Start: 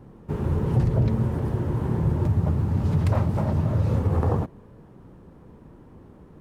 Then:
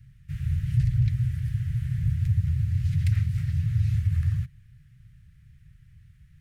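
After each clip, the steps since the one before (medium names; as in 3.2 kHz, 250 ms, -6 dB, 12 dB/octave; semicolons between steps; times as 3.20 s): elliptic band-stop 130–1900 Hz, stop band 40 dB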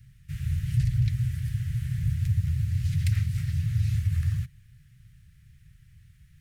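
treble shelf 2.8 kHz +9 dB; trim -1.5 dB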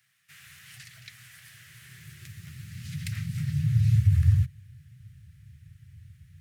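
high-pass sweep 700 Hz -> 89 Hz, 1.36–4.36 s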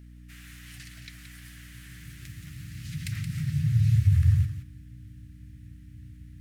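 hum 60 Hz, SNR 19 dB; thinning echo 174 ms, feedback 15%, high-pass 160 Hz, level -8.5 dB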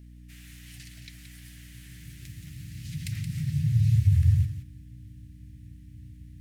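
peaking EQ 1.3 kHz -10 dB 1 oct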